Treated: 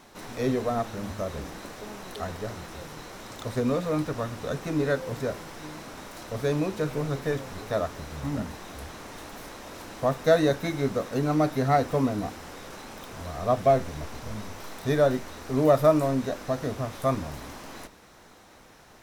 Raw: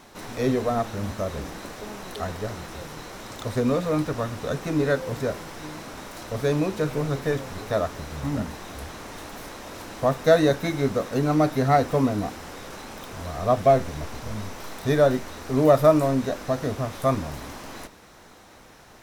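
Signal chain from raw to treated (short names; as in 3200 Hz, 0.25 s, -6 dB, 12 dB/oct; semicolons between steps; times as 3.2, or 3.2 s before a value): notches 50/100 Hz; gain -3 dB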